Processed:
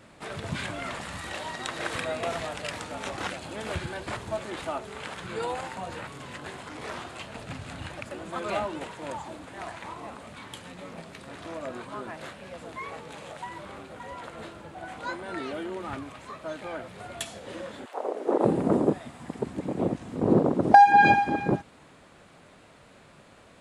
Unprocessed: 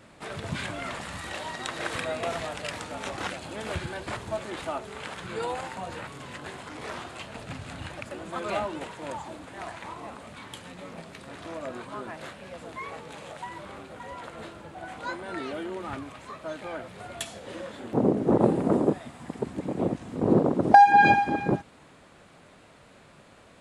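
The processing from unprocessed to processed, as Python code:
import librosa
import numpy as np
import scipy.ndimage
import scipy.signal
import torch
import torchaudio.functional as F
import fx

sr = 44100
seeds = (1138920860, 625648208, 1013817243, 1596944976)

y = fx.highpass(x, sr, hz=fx.line((17.84, 780.0), (18.44, 280.0)), slope=24, at=(17.84, 18.44), fade=0.02)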